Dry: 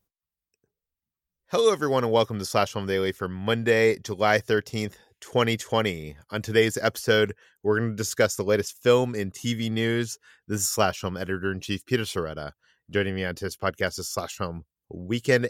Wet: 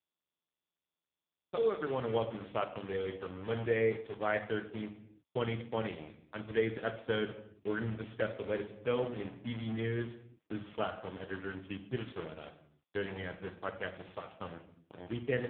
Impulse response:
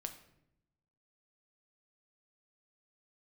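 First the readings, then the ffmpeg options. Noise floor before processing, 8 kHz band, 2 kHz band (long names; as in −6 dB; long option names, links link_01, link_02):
below −85 dBFS, below −40 dB, −13.0 dB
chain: -filter_complex "[0:a]acrusher=bits=4:mix=0:aa=0.000001[link_01];[1:a]atrim=start_sample=2205,afade=type=out:start_time=0.39:duration=0.01,atrim=end_sample=17640[link_02];[link_01][link_02]afir=irnorm=-1:irlink=0,volume=-7.5dB" -ar 8000 -c:a libopencore_amrnb -b:a 5150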